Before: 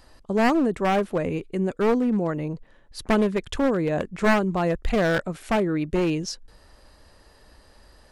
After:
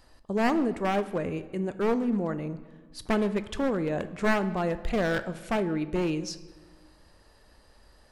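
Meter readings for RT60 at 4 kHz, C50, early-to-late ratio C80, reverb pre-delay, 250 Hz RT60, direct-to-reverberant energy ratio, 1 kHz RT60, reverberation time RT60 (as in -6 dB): 0.95 s, 14.0 dB, 16.0 dB, 9 ms, 1.7 s, 11.5 dB, 1.4 s, 1.4 s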